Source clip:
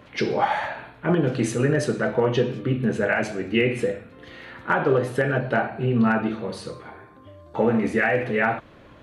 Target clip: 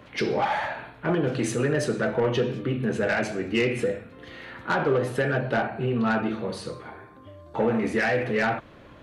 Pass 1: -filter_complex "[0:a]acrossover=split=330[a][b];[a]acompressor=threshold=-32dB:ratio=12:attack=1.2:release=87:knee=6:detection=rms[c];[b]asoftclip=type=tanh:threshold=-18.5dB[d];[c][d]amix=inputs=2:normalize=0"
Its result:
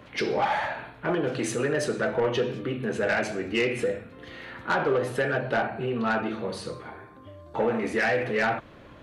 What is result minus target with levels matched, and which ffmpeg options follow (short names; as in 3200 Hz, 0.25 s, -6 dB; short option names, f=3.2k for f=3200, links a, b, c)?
compressor: peak gain reduction +8 dB
-filter_complex "[0:a]acrossover=split=330[a][b];[a]acompressor=threshold=-23.5dB:ratio=12:attack=1.2:release=87:knee=6:detection=rms[c];[b]asoftclip=type=tanh:threshold=-18.5dB[d];[c][d]amix=inputs=2:normalize=0"